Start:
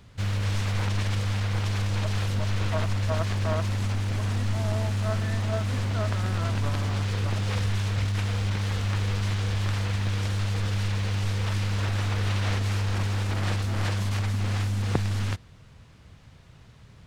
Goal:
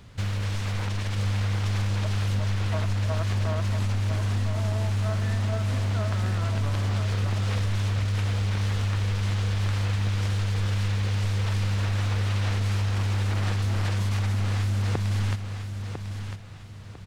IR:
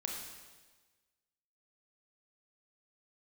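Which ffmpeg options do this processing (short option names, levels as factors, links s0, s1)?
-af "acompressor=threshold=0.0398:ratio=6,aecho=1:1:1000|2000|3000|4000:0.422|0.135|0.0432|0.0138,volume=1.41"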